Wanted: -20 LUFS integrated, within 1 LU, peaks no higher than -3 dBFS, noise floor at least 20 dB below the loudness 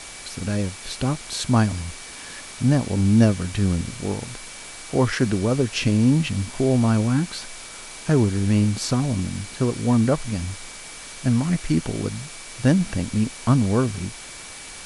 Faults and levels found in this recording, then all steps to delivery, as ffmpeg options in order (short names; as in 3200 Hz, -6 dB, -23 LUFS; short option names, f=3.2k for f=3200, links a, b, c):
steady tone 2300 Hz; tone level -46 dBFS; noise floor -39 dBFS; noise floor target -43 dBFS; loudness -22.5 LUFS; peak -4.5 dBFS; loudness target -20.0 LUFS
-> -af "bandreject=f=2.3k:w=30"
-af "afftdn=nr=6:nf=-39"
-af "volume=2.5dB,alimiter=limit=-3dB:level=0:latency=1"